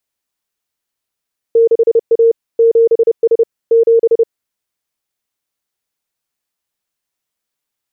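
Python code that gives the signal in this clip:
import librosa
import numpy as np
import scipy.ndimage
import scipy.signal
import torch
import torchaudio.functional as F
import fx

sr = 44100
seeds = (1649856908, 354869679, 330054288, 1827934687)

y = fx.morse(sr, text='6A 7S 7', wpm=30, hz=459.0, level_db=-5.5)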